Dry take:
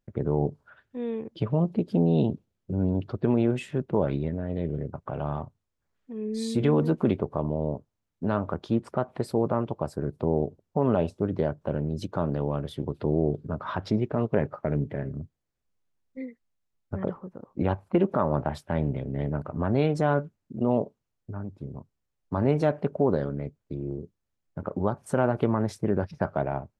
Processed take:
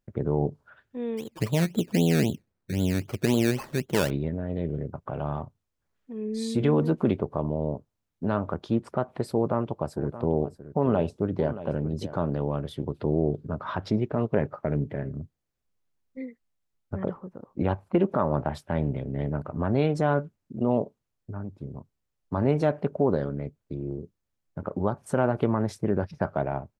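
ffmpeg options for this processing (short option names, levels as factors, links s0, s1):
-filter_complex "[0:a]asplit=3[s0][s1][s2];[s0]afade=t=out:st=1.17:d=0.02[s3];[s1]acrusher=samples=17:mix=1:aa=0.000001:lfo=1:lforange=10.2:lforate=3.8,afade=t=in:st=1.17:d=0.02,afade=t=out:st=4.09:d=0.02[s4];[s2]afade=t=in:st=4.09:d=0.02[s5];[s3][s4][s5]amix=inputs=3:normalize=0,asplit=3[s6][s7][s8];[s6]afade=t=out:st=9.89:d=0.02[s9];[s7]aecho=1:1:625:0.2,afade=t=in:st=9.89:d=0.02,afade=t=out:st=12.13:d=0.02[s10];[s8]afade=t=in:st=12.13:d=0.02[s11];[s9][s10][s11]amix=inputs=3:normalize=0"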